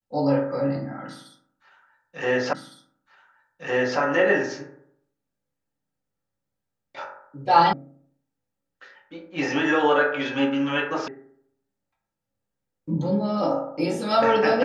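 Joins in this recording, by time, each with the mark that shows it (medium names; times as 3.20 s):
2.53 s: repeat of the last 1.46 s
7.73 s: sound stops dead
11.08 s: sound stops dead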